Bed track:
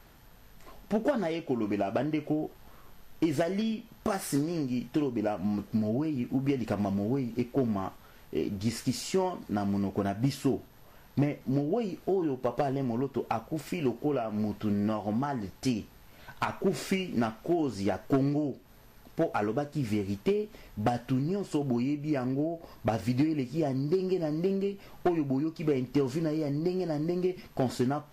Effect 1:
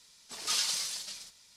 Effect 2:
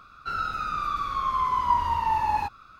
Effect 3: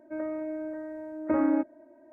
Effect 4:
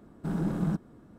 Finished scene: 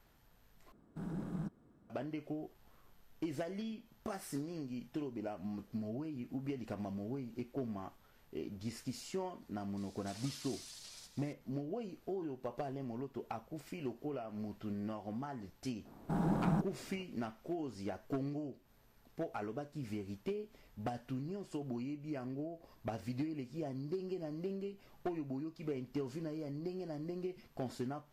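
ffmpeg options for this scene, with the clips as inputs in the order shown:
-filter_complex "[4:a]asplit=2[a][b];[0:a]volume=-12dB[c];[1:a]acompressor=threshold=-45dB:ratio=6:attack=3.2:release=140:knee=1:detection=peak[d];[b]equalizer=f=810:t=o:w=0.88:g=10[e];[c]asplit=2[f][g];[f]atrim=end=0.724[h];[a]atrim=end=1.18,asetpts=PTS-STARTPTS,volume=-12dB[i];[g]atrim=start=1.896[j];[d]atrim=end=1.56,asetpts=PTS-STARTPTS,volume=-3.5dB,afade=t=in:d=0.004:c=hsin,afade=t=out:st=1.556:d=0.004:c=hsin,adelay=9770[k];[e]atrim=end=1.18,asetpts=PTS-STARTPTS,volume=-4.5dB,afade=t=in:d=0.004:c=hsin,afade=t=out:st=1.176:d=0.004:c=hsin,adelay=15850[l];[h][i]acrossfade=d=0.004:c1=hsin:c2=hsin[m];[m][j]acrossfade=d=0.004:c1=hsin:c2=hsin[n];[n][k][l]amix=inputs=3:normalize=0"

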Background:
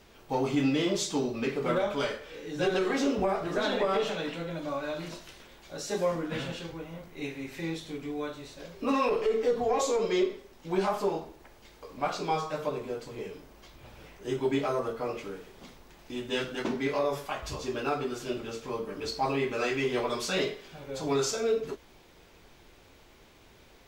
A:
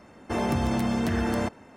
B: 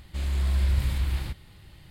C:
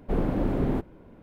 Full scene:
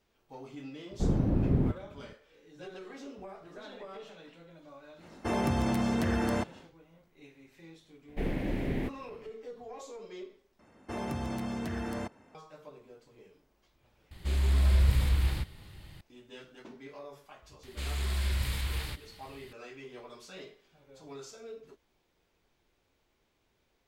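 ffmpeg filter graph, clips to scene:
-filter_complex "[3:a]asplit=2[a][b];[1:a]asplit=2[c][d];[2:a]asplit=2[e][f];[0:a]volume=-18dB[g];[a]equalizer=f=100:t=o:w=2.8:g=14.5[h];[b]highshelf=f=1.6k:t=q:w=3:g=7[i];[f]tiltshelf=f=800:g=-5[j];[g]asplit=2[k][l];[k]atrim=end=10.594[m];[d]atrim=end=1.76,asetpts=PTS-STARTPTS,volume=-9.5dB[n];[l]atrim=start=12.346[o];[h]atrim=end=1.22,asetpts=PTS-STARTPTS,volume=-10dB,afade=t=in:d=0.004:c=hsin,afade=t=out:st=1.216:d=0.004:c=hsin,adelay=910[p];[c]atrim=end=1.76,asetpts=PTS-STARTPTS,volume=-3dB,afade=t=in:d=0.1,afade=t=out:st=1.66:d=0.1,adelay=4950[q];[i]atrim=end=1.22,asetpts=PTS-STARTPTS,volume=-6.5dB,afade=t=in:d=0.004:c=hsin,afade=t=out:st=1.216:d=0.004:c=hsin,adelay=8080[r];[e]atrim=end=1.9,asetpts=PTS-STARTPTS,afade=t=in:d=0.004:c=hsin,afade=t=out:st=1.896:d=0.004:c=hsin,adelay=14110[s];[j]atrim=end=1.9,asetpts=PTS-STARTPTS,volume=-2.5dB,afade=t=in:d=0.004:c=hsin,afade=t=out:st=1.896:d=0.004:c=hsin,adelay=17630[t];[m][n]acrossfade=d=0.004:c1=hsin:c2=hsin[u];[u][o]acrossfade=d=0.004:c1=hsin:c2=hsin[v];[v][p][q][r][s][t]amix=inputs=6:normalize=0"

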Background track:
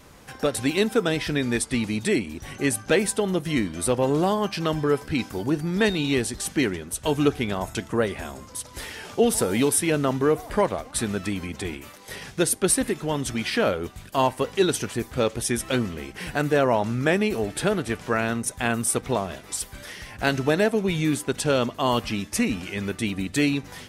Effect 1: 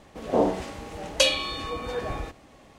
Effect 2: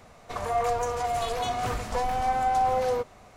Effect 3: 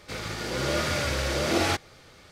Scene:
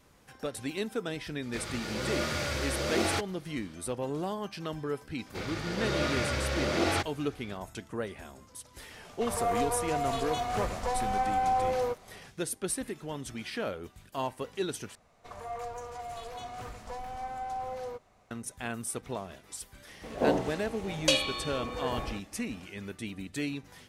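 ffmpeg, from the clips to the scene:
-filter_complex "[3:a]asplit=2[a][b];[2:a]asplit=2[c][d];[0:a]volume=-12dB[e];[b]highshelf=f=7.2k:g=-10.5[f];[c]aresample=32000,aresample=44100[g];[e]asplit=2[h][i];[h]atrim=end=14.954[j];[d]atrim=end=3.36,asetpts=PTS-STARTPTS,volume=-12.5dB[k];[i]atrim=start=18.306[l];[a]atrim=end=2.31,asetpts=PTS-STARTPTS,volume=-5dB,afade=t=in:d=0.004:c=hsin,afade=t=out:st=2.306:d=0.004:c=hsin,adelay=1440[m];[f]atrim=end=2.31,asetpts=PTS-STARTPTS,volume=-3dB,afade=t=in:d=0.004:c=hsin,afade=t=out:st=2.306:d=0.004:c=hsin,adelay=5260[n];[g]atrim=end=3.36,asetpts=PTS-STARTPTS,volume=-3.5dB,afade=t=in:d=0.004:c=hsin,afade=t=out:st=3.356:d=0.004:c=hsin,adelay=8910[o];[1:a]atrim=end=2.78,asetpts=PTS-STARTPTS,volume=-4.5dB,afade=t=in:d=0.004:c=hsin,afade=t=out:st=2.776:d=0.004:c=hsin,adelay=876708S[p];[j][k]acrossfade=d=0.004:c1=hsin:c2=hsin[q];[q][l]acrossfade=d=0.004:c1=hsin:c2=hsin[r];[r][m][n][o][p]amix=inputs=5:normalize=0"

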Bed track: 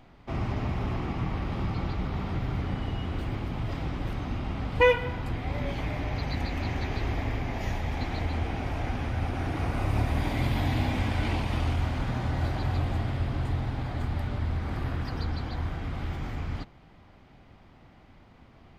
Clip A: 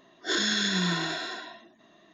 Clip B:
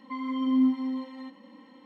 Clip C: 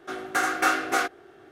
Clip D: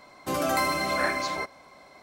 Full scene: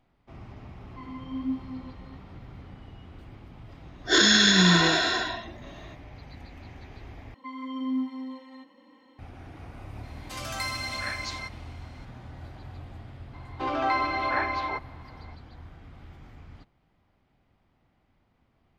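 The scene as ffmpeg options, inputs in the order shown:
-filter_complex "[2:a]asplit=2[a][b];[4:a]asplit=2[c][d];[0:a]volume=-14.5dB[e];[a]flanger=delay=17.5:depth=7.1:speed=1.3[f];[1:a]dynaudnorm=f=140:g=3:m=16dB[g];[b]equalizer=f=200:t=o:w=0.52:g=-9.5[h];[c]bandpass=f=4.1k:t=q:w=0.73:csg=0[i];[d]highpass=f=290:w=0.5412,highpass=f=290:w=1.3066,equalizer=f=290:t=q:w=4:g=4,equalizer=f=570:t=q:w=4:g=-6,equalizer=f=870:t=q:w=4:g=9,lowpass=f=3.8k:w=0.5412,lowpass=f=3.8k:w=1.3066[j];[e]asplit=2[k][l];[k]atrim=end=7.344[m];[h]atrim=end=1.85,asetpts=PTS-STARTPTS,volume=-3dB[n];[l]atrim=start=9.186[o];[f]atrim=end=1.85,asetpts=PTS-STARTPTS,volume=-6dB,afade=t=in:d=0.004:c=hsin,afade=t=out:st=1.846:d=0.004:c=hsin,adelay=860[p];[g]atrim=end=2.13,asetpts=PTS-STARTPTS,volume=-5.5dB,afade=t=in:d=0.004:c=hsin,afade=t=out:st=2.126:d=0.004:c=hsin,adelay=3830[q];[i]atrim=end=2.02,asetpts=PTS-STARTPTS,volume=-0.5dB,afade=t=in:d=0.004:c=hsin,afade=t=out:st=2.016:d=0.004:c=hsin,adelay=10030[r];[j]atrim=end=2.02,asetpts=PTS-STARTPTS,volume=-1.5dB,afade=t=in:d=0.004:c=hsin,afade=t=out:st=2.016:d=0.004:c=hsin,adelay=13330[s];[m][n]acrossfade=d=0.004:c1=hsin:c2=hsin[t];[t][o]acrossfade=d=0.004:c1=hsin:c2=hsin[u];[u][p][q][r][s]amix=inputs=5:normalize=0"

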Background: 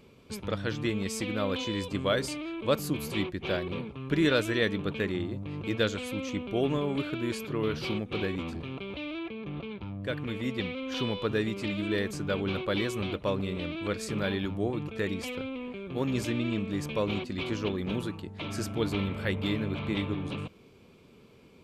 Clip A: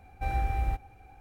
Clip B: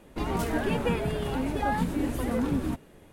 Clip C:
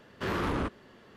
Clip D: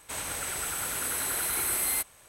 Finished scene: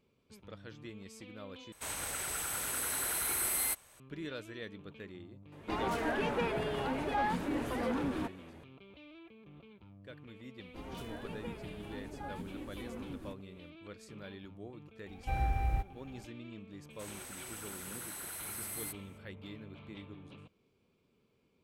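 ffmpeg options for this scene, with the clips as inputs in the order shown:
-filter_complex "[4:a]asplit=2[a][b];[2:a]asplit=2[c][d];[0:a]volume=-17.5dB[e];[c]asplit=2[f][g];[g]highpass=f=720:p=1,volume=16dB,asoftclip=type=tanh:threshold=-14dB[h];[f][h]amix=inputs=2:normalize=0,lowpass=f=2.4k:p=1,volume=-6dB[i];[1:a]equalizer=f=140:t=o:w=0.77:g=5[j];[e]asplit=2[k][l];[k]atrim=end=1.724[m];[a]atrim=end=2.28,asetpts=PTS-STARTPTS,volume=-4.5dB[n];[l]atrim=start=3.996[o];[i]atrim=end=3.12,asetpts=PTS-STARTPTS,volume=-8.5dB,afade=t=in:d=0.004:c=hsin,afade=t=out:st=3.116:d=0.004:c=hsin,adelay=5520[p];[d]atrim=end=3.12,asetpts=PTS-STARTPTS,volume=-17dB,afade=t=in:d=0.004:c=hsin,afade=t=out:st=3.116:d=0.004:c=hsin,adelay=466578S[q];[j]atrim=end=1.2,asetpts=PTS-STARTPTS,volume=-3.5dB,afade=t=in:d=0.004:c=hsin,afade=t=out:st=1.196:d=0.004:c=hsin,adelay=15060[r];[b]atrim=end=2.28,asetpts=PTS-STARTPTS,volume=-13.5dB,afade=t=in:d=0.004:c=hsin,afade=t=out:st=2.276:d=0.004:c=hsin,adelay=16900[s];[m][n]acrossfade=d=0.004:c1=hsin:c2=hsin[t];[t][o]acrossfade=d=0.004:c1=hsin:c2=hsin[u];[u][p][q][r][s]amix=inputs=5:normalize=0"

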